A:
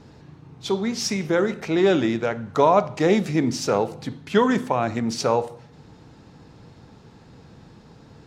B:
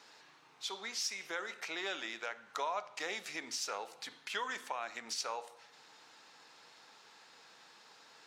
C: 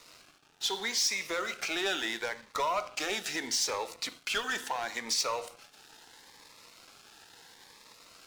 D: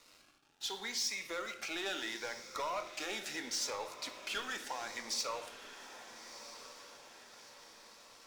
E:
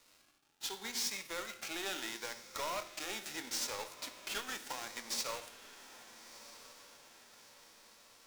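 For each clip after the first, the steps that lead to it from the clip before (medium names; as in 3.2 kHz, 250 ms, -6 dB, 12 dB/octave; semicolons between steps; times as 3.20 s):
Bessel high-pass 1.5 kHz, order 2; compression 2:1, threshold -45 dBFS, peak gain reduction 12.5 dB; trim +1.5 dB
waveshaping leveller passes 3; Shepard-style phaser rising 0.75 Hz
echo that smears into a reverb 1314 ms, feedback 50%, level -12 dB; on a send at -9 dB: reverberation RT60 0.65 s, pre-delay 4 ms; on the sum: trim -7.5 dB
formants flattened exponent 0.6; in parallel at -9.5 dB: bit crusher 6-bit; on the sum: trim -3.5 dB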